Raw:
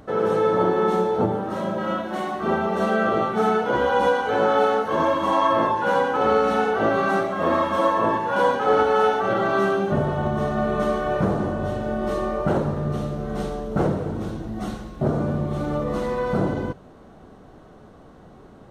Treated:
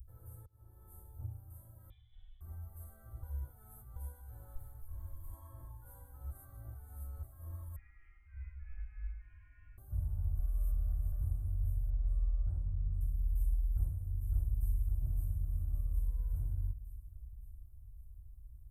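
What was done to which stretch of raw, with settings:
0:00.46–0:01.00: fade in
0:01.90–0:02.41: voice inversion scrambler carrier 3,700 Hz
0:03.23–0:03.96: reverse
0:04.55–0:05.33: tube saturation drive 18 dB, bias 0.55
0:06.31–0:07.23: reverse
0:07.76–0:09.78: voice inversion scrambler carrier 3,000 Hz
0:10.39–0:11.12: reverse
0:11.90–0:13.01: high-frequency loss of the air 97 metres
0:13.71–0:14.82: delay throw 560 ms, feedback 60%, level −2 dB
0:15.52–0:16.37: high-shelf EQ 5,700 Hz −4 dB
whole clip: inverse Chebyshev band-stop filter 180–5,900 Hz, stop band 50 dB; parametric band 380 Hz +12.5 dB 0.75 octaves; level +5.5 dB

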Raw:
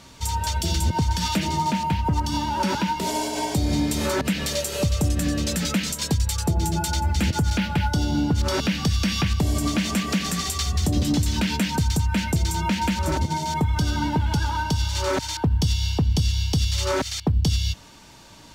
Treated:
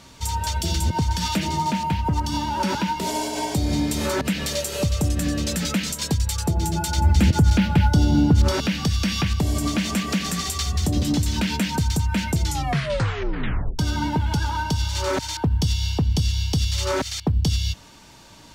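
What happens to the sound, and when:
0:06.98–0:08.52: low-shelf EQ 470 Hz +6.5 dB
0:12.42: tape stop 1.37 s

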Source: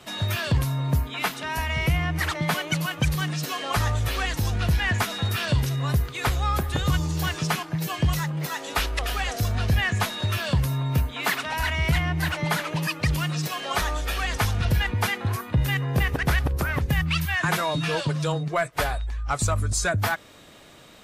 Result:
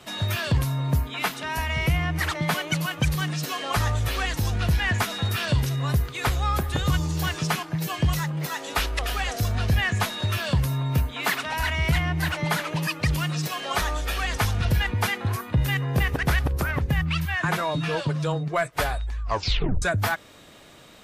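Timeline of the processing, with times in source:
0:16.71–0:18.54: high-shelf EQ 3,300 Hz −7 dB
0:19.21: tape stop 0.61 s

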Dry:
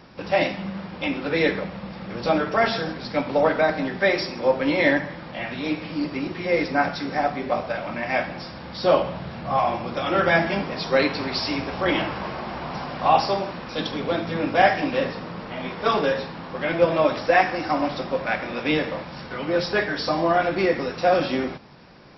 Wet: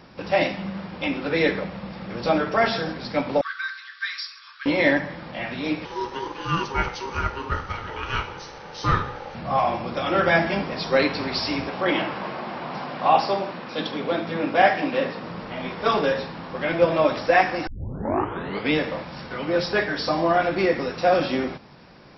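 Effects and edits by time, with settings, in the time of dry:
0:03.41–0:04.66: Chebyshev high-pass with heavy ripple 1,100 Hz, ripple 9 dB
0:05.85–0:09.35: ring modulation 670 Hz
0:11.69–0:15.24: band-pass filter 160–4,800 Hz
0:17.67: tape start 1.06 s

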